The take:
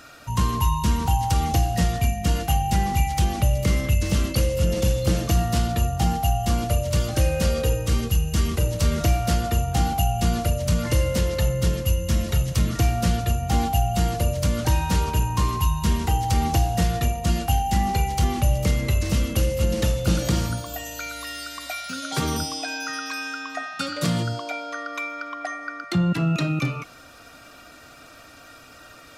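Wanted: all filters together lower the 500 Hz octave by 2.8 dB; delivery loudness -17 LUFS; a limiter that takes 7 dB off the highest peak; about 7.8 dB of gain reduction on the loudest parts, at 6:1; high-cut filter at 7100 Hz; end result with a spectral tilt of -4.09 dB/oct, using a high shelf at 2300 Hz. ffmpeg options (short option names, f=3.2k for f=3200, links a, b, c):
-af "lowpass=7.1k,equalizer=f=500:t=o:g=-4,highshelf=f=2.3k:g=7,acompressor=threshold=-24dB:ratio=6,volume=12.5dB,alimiter=limit=-7dB:level=0:latency=1"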